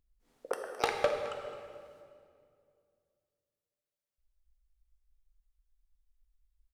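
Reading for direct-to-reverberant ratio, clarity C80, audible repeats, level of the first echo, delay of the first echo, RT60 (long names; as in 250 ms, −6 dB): 3.0 dB, 5.5 dB, 1, −14.0 dB, 214 ms, 2.2 s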